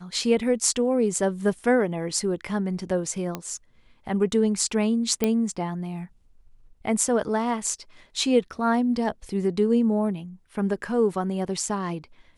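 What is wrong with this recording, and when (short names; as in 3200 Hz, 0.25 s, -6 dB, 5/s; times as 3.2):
3.35 pop -15 dBFS
5.24 pop -9 dBFS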